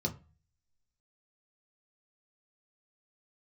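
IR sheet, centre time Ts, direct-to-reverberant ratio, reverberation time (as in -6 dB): 9 ms, 0.5 dB, 0.35 s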